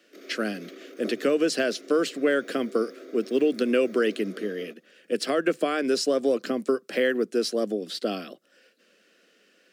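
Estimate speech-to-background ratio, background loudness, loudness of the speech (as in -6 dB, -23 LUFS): 18.0 dB, -44.5 LUFS, -26.5 LUFS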